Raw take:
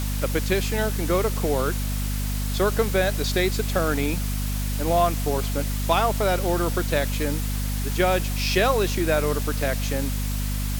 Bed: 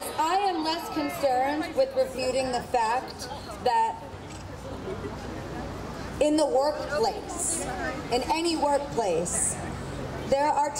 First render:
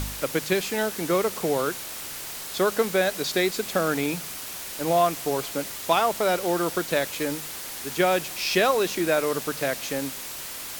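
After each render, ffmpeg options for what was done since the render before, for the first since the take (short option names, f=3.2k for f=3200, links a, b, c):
-af "bandreject=f=50:t=h:w=4,bandreject=f=100:t=h:w=4,bandreject=f=150:t=h:w=4,bandreject=f=200:t=h:w=4,bandreject=f=250:t=h:w=4"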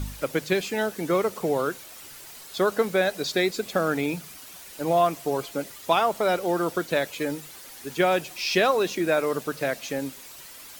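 -af "afftdn=nr=10:nf=-36"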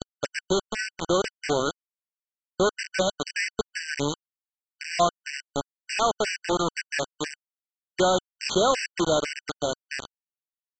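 -af "aresample=16000,acrusher=bits=3:mix=0:aa=0.000001,aresample=44100,afftfilt=real='re*gt(sin(2*PI*2*pts/sr)*(1-2*mod(floor(b*sr/1024/1500),2)),0)':imag='im*gt(sin(2*PI*2*pts/sr)*(1-2*mod(floor(b*sr/1024/1500),2)),0)':win_size=1024:overlap=0.75"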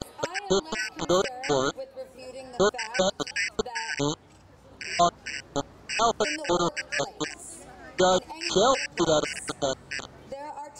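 -filter_complex "[1:a]volume=-14.5dB[a];[0:a][a]amix=inputs=2:normalize=0"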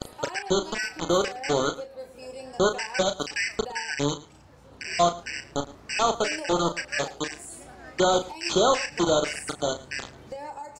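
-filter_complex "[0:a]asplit=2[a][b];[b]adelay=35,volume=-9dB[c];[a][c]amix=inputs=2:normalize=0,aecho=1:1:111:0.112"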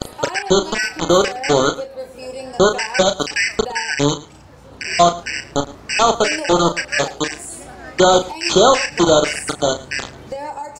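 -af "volume=9.5dB,alimiter=limit=-1dB:level=0:latency=1"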